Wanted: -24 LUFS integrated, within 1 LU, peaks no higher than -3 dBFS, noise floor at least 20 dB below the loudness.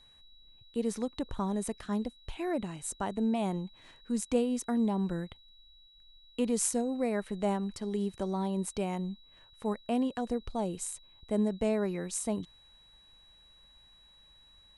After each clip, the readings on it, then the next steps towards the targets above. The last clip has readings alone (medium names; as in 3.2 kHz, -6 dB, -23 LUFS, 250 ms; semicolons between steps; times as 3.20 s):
steady tone 3.9 kHz; tone level -58 dBFS; loudness -33.0 LUFS; peak level -14.0 dBFS; loudness target -24.0 LUFS
-> band-stop 3.9 kHz, Q 30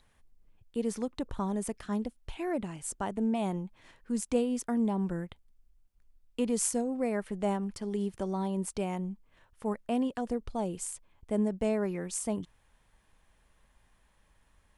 steady tone not found; loudness -33.0 LUFS; peak level -14.0 dBFS; loudness target -24.0 LUFS
-> trim +9 dB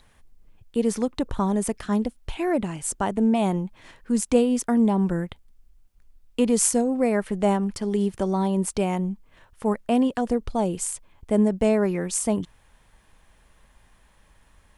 loudness -24.0 LUFS; peak level -5.0 dBFS; noise floor -59 dBFS